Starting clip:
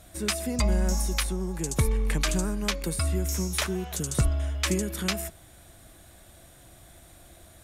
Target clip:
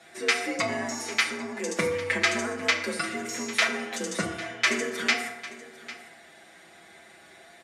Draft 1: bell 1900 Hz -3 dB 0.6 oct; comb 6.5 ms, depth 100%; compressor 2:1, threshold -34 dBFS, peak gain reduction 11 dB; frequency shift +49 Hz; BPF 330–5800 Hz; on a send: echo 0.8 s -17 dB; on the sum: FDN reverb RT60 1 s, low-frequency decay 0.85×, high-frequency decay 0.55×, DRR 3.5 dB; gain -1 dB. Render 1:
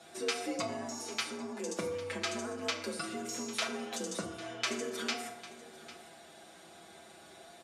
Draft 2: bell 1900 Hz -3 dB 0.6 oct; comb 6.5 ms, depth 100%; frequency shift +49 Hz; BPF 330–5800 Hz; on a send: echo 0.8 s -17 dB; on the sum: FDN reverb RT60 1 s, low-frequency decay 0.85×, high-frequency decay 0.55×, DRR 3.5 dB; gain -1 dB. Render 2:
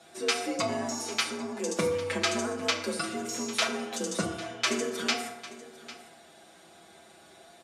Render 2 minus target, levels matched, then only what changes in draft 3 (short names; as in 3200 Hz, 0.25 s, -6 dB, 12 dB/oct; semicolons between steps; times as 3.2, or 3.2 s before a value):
2000 Hz band -4.5 dB
change: bell 1900 Hz +9 dB 0.6 oct